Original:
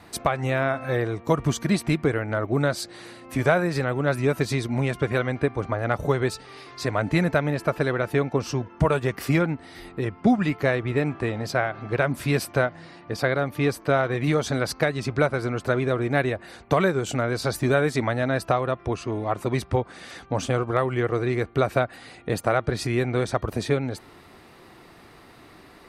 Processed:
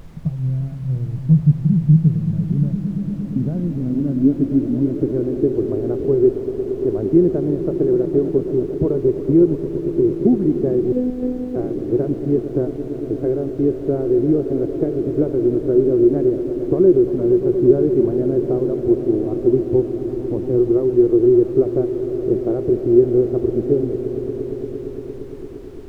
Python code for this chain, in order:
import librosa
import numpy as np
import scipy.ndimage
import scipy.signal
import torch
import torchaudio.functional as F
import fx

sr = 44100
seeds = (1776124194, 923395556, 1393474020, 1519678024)

y = fx.echo_swell(x, sr, ms=115, loudest=5, wet_db=-14.5)
y = fx.filter_sweep_lowpass(y, sr, from_hz=160.0, to_hz=360.0, start_s=2.09, end_s=5.55, q=8.0)
y = fx.robotise(y, sr, hz=251.0, at=(10.92, 11.56))
y = fx.dmg_noise_colour(y, sr, seeds[0], colour='brown', level_db=-37.0)
y = y * librosa.db_to_amplitude(-1.5)